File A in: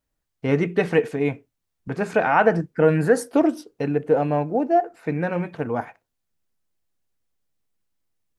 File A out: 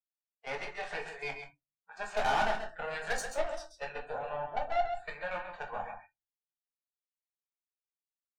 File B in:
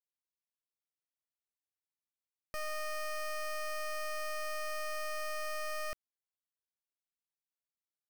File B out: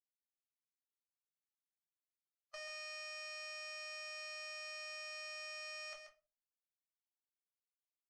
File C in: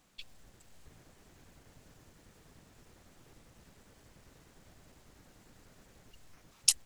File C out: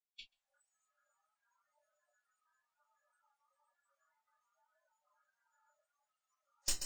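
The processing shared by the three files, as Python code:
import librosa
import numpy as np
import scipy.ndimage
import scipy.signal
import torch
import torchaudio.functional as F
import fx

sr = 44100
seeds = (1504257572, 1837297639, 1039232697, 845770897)

p1 = fx.spec_quant(x, sr, step_db=15)
p2 = scipy.signal.sosfilt(scipy.signal.ellip(3, 1.0, 40, [680.0, 8000.0], 'bandpass', fs=sr, output='sos'), p1)
p3 = fx.level_steps(p2, sr, step_db=12)
p4 = fx.tube_stage(p3, sr, drive_db=29.0, bias=0.55)
p5 = p4 + fx.echo_single(p4, sr, ms=134, db=-8.0, dry=0)
p6 = fx.room_shoebox(p5, sr, seeds[0], volume_m3=120.0, walls='furnished', distance_m=1.3)
y = fx.noise_reduce_blind(p6, sr, reduce_db=24)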